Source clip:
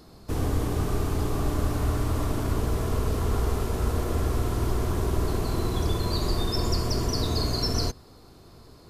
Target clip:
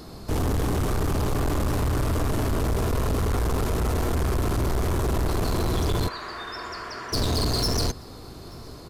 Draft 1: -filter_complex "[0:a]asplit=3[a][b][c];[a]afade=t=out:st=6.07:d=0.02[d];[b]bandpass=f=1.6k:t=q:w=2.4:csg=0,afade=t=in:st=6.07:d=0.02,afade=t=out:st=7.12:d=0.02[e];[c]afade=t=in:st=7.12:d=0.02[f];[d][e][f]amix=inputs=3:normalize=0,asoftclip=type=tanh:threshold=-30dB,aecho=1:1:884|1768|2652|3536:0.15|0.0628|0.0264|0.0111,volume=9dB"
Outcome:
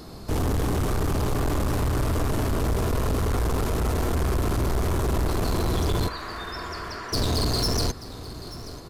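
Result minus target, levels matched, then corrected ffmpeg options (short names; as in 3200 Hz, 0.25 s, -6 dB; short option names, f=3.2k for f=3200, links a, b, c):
echo-to-direct +11 dB
-filter_complex "[0:a]asplit=3[a][b][c];[a]afade=t=out:st=6.07:d=0.02[d];[b]bandpass=f=1.6k:t=q:w=2.4:csg=0,afade=t=in:st=6.07:d=0.02,afade=t=out:st=7.12:d=0.02[e];[c]afade=t=in:st=7.12:d=0.02[f];[d][e][f]amix=inputs=3:normalize=0,asoftclip=type=tanh:threshold=-30dB,aecho=1:1:884|1768:0.0422|0.0177,volume=9dB"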